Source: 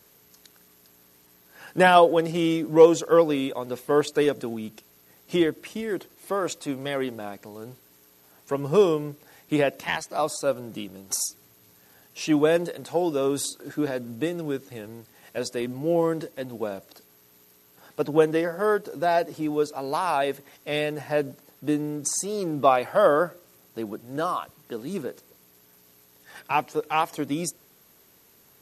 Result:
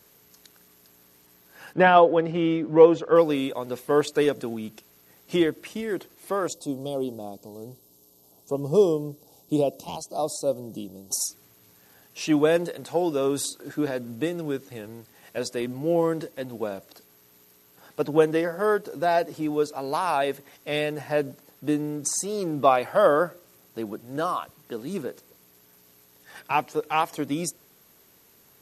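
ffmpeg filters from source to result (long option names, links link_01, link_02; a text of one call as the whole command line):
ffmpeg -i in.wav -filter_complex "[0:a]asettb=1/sr,asplit=3[link_01][link_02][link_03];[link_01]atrim=end=1.734[link_04];[link_02]atrim=start=1.73:end=3.16,asetpts=PTS-STARTPTS,afade=type=in:duration=0.004:curve=qsin,afade=type=out:start_time=1.426:duration=0.004:curve=qsin,lowpass=2600[link_05];[link_03]atrim=start=3.156[link_06];[link_04][link_05]acrossfade=duration=0.004:curve1=hsin:curve2=qsin[link_07];[link_07][link_06]acrossfade=duration=0.004:curve1=qsin:curve2=hsin,asplit=3[link_08][link_09][link_10];[link_08]afade=type=out:start_time=6.47:duration=0.02[link_11];[link_09]asuperstop=centerf=1800:order=4:qfactor=0.58,afade=type=in:start_time=6.47:duration=0.02,afade=type=out:start_time=11.19:duration=0.02[link_12];[link_10]afade=type=in:start_time=11.19:duration=0.02[link_13];[link_11][link_12][link_13]amix=inputs=3:normalize=0" out.wav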